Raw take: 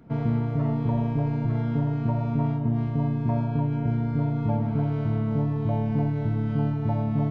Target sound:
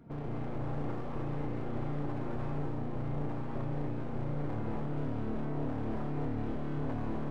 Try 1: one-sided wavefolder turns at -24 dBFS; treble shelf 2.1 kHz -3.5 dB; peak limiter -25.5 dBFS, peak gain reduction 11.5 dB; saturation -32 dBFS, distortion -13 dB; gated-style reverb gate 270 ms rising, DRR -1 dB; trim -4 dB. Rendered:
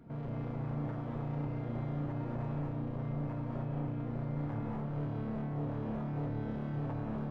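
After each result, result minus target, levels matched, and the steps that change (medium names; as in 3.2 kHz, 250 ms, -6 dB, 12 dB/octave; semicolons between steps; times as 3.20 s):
saturation: distortion +12 dB; one-sided wavefolder: distortion -9 dB
change: saturation -23.5 dBFS, distortion -25 dB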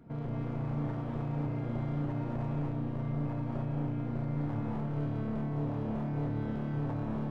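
one-sided wavefolder: distortion -9 dB
change: one-sided wavefolder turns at -30 dBFS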